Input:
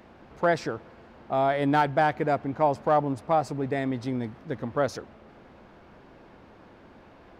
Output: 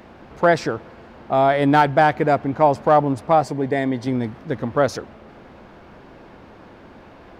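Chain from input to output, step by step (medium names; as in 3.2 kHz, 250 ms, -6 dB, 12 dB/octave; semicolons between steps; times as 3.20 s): 3.44–4.07 s: comb of notches 1.3 kHz; trim +7.5 dB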